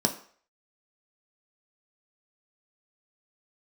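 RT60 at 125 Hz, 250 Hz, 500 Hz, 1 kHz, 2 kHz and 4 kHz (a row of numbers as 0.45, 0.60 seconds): 0.30, 0.40, 0.50, 0.50, 0.50, 0.45 seconds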